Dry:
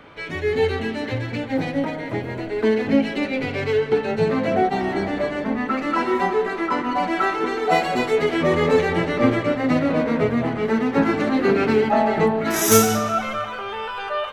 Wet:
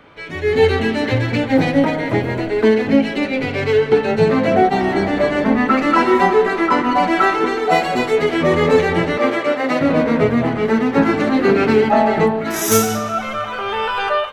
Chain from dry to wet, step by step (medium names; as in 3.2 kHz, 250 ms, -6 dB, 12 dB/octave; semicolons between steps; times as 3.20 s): 9.17–9.81 s: high-pass 390 Hz 12 dB/octave; level rider gain up to 12.5 dB; trim -1 dB